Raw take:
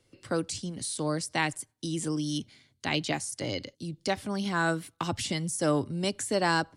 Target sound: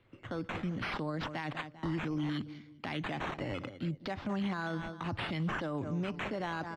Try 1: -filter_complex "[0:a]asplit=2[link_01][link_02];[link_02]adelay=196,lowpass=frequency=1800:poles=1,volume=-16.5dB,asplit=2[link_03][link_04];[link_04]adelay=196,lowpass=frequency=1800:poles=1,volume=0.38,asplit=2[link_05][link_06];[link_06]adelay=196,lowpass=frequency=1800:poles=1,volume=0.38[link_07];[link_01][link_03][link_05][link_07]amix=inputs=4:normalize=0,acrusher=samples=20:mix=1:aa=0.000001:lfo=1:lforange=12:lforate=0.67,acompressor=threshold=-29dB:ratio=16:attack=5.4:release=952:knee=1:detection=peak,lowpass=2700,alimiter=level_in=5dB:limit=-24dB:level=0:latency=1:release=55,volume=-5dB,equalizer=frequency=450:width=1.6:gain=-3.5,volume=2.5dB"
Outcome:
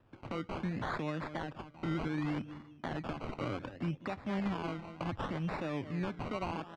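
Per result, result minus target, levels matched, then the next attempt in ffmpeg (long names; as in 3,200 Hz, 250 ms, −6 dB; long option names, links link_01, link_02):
downward compressor: peak gain reduction +12 dB; sample-and-hold swept by an LFO: distortion +6 dB
-filter_complex "[0:a]asplit=2[link_01][link_02];[link_02]adelay=196,lowpass=frequency=1800:poles=1,volume=-16.5dB,asplit=2[link_03][link_04];[link_04]adelay=196,lowpass=frequency=1800:poles=1,volume=0.38,asplit=2[link_05][link_06];[link_06]adelay=196,lowpass=frequency=1800:poles=1,volume=0.38[link_07];[link_01][link_03][link_05][link_07]amix=inputs=4:normalize=0,acrusher=samples=20:mix=1:aa=0.000001:lfo=1:lforange=12:lforate=0.67,lowpass=2700,alimiter=level_in=5dB:limit=-24dB:level=0:latency=1:release=55,volume=-5dB,equalizer=frequency=450:width=1.6:gain=-3.5,volume=2.5dB"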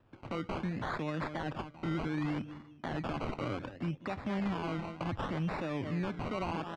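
sample-and-hold swept by an LFO: distortion +6 dB
-filter_complex "[0:a]asplit=2[link_01][link_02];[link_02]adelay=196,lowpass=frequency=1800:poles=1,volume=-16.5dB,asplit=2[link_03][link_04];[link_04]adelay=196,lowpass=frequency=1800:poles=1,volume=0.38,asplit=2[link_05][link_06];[link_06]adelay=196,lowpass=frequency=1800:poles=1,volume=0.38[link_07];[link_01][link_03][link_05][link_07]amix=inputs=4:normalize=0,acrusher=samples=7:mix=1:aa=0.000001:lfo=1:lforange=4.2:lforate=0.67,lowpass=2700,alimiter=level_in=5dB:limit=-24dB:level=0:latency=1:release=55,volume=-5dB,equalizer=frequency=450:width=1.6:gain=-3.5,volume=2.5dB"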